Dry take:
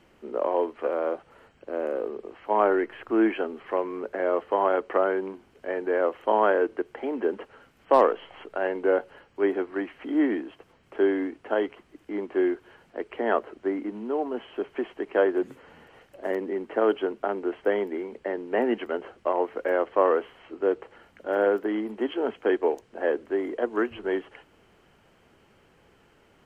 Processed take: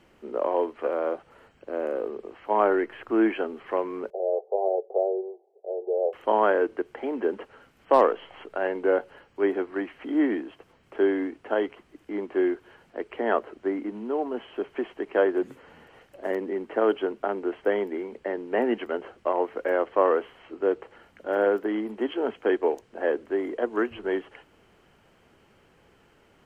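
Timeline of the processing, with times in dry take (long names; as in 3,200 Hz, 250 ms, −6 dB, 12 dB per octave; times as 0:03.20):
0:04.10–0:06.13: Chebyshev band-pass filter 380–790 Hz, order 4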